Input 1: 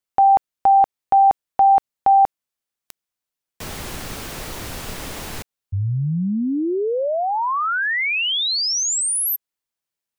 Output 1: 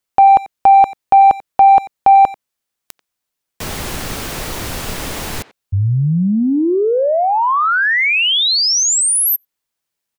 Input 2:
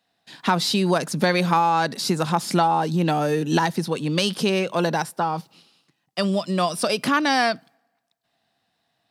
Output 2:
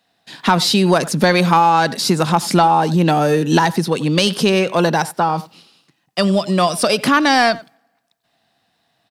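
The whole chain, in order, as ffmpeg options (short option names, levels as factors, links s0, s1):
-filter_complex "[0:a]acontrast=36,asplit=2[s0][s1];[s1]adelay=90,highpass=300,lowpass=3400,asoftclip=type=hard:threshold=0.266,volume=0.141[s2];[s0][s2]amix=inputs=2:normalize=0,volume=1.19"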